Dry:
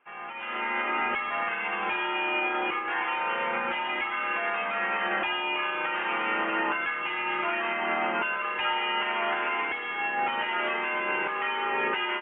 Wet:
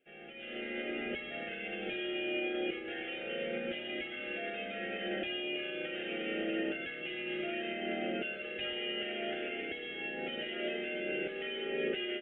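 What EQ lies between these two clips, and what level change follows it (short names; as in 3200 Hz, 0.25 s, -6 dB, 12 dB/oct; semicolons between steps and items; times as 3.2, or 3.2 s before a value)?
Butterworth band-stop 1000 Hz, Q 0.83; band shelf 1600 Hz -10 dB; 0.0 dB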